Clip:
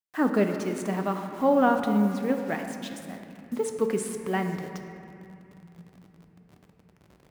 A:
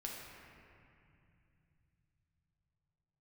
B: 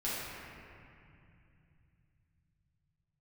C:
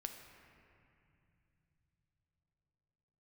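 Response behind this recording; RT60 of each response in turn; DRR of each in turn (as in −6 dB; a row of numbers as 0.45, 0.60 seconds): C; 2.5 s, 2.5 s, non-exponential decay; −2.5, −10.0, 4.5 decibels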